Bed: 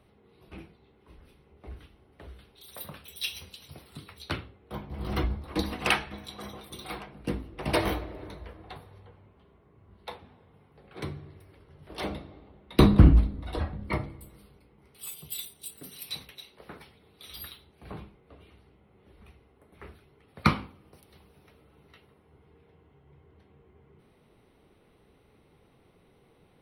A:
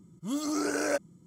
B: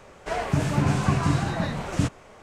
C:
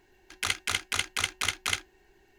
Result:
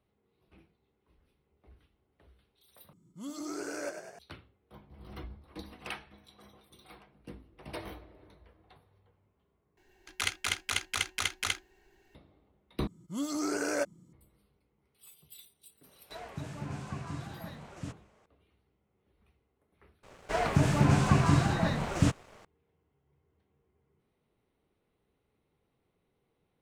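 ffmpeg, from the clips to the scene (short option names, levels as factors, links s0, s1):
-filter_complex "[1:a]asplit=2[s0][s1];[2:a]asplit=2[s2][s3];[0:a]volume=0.168[s4];[s0]asplit=9[s5][s6][s7][s8][s9][s10][s11][s12][s13];[s6]adelay=100,afreqshift=39,volume=0.398[s14];[s7]adelay=200,afreqshift=78,volume=0.245[s15];[s8]adelay=300,afreqshift=117,volume=0.153[s16];[s9]adelay=400,afreqshift=156,volume=0.0944[s17];[s10]adelay=500,afreqshift=195,volume=0.0589[s18];[s11]adelay=600,afreqshift=234,volume=0.0363[s19];[s12]adelay=700,afreqshift=273,volume=0.0226[s20];[s13]adelay=800,afreqshift=312,volume=0.014[s21];[s5][s14][s15][s16][s17][s18][s19][s20][s21]amix=inputs=9:normalize=0[s22];[s2]highpass=43[s23];[s3]aeval=exprs='sgn(val(0))*max(abs(val(0))-0.00224,0)':c=same[s24];[s4]asplit=4[s25][s26][s27][s28];[s25]atrim=end=2.934[s29];[s22]atrim=end=1.26,asetpts=PTS-STARTPTS,volume=0.335[s30];[s26]atrim=start=4.186:end=9.774[s31];[3:a]atrim=end=2.38,asetpts=PTS-STARTPTS,volume=0.708[s32];[s27]atrim=start=12.146:end=12.874[s33];[s1]atrim=end=1.26,asetpts=PTS-STARTPTS,volume=0.75[s34];[s28]atrim=start=14.126[s35];[s23]atrim=end=2.42,asetpts=PTS-STARTPTS,volume=0.141,afade=t=in:d=0.004:c=hsin,afade=t=out:st=2.416:d=0.004:c=hsin,adelay=15840[s36];[s24]atrim=end=2.42,asetpts=PTS-STARTPTS,volume=0.841,afade=t=in:d=0.004:c=hsin,afade=t=out:st=2.416:d=0.004:c=hsin,adelay=20030[s37];[s29][s30]acrossfade=d=0.004:c1=hsin:c2=hsin[s38];[s38][s31]acrossfade=d=0.004:c1=hsin:c2=hsin[s39];[s39][s32]acrossfade=d=0.004:c1=hsin:c2=hsin[s40];[s40][s33]acrossfade=d=0.004:c1=hsin:c2=hsin[s41];[s41][s34]acrossfade=d=0.004:c1=hsin:c2=hsin[s42];[s42][s35]acrossfade=d=0.004:c1=hsin:c2=hsin[s43];[s43][s36][s37]amix=inputs=3:normalize=0"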